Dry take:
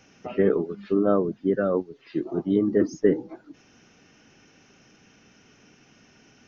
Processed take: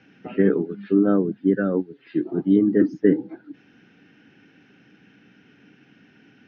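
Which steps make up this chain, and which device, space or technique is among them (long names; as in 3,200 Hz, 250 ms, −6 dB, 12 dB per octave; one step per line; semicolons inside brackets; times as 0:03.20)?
guitar cabinet (loudspeaker in its box 100–3,800 Hz, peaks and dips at 130 Hz +3 dB, 190 Hz +5 dB, 290 Hz +7 dB, 620 Hz −6 dB, 1,100 Hz −9 dB, 1,600 Hz +7 dB)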